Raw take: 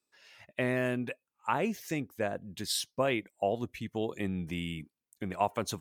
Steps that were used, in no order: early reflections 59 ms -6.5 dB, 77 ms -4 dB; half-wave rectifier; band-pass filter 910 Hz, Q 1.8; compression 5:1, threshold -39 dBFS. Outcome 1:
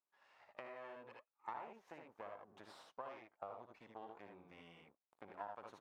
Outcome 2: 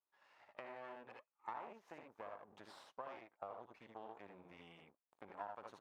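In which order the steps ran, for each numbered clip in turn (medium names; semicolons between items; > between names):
half-wave rectifier > early reflections > compression > band-pass filter; early reflections > half-wave rectifier > compression > band-pass filter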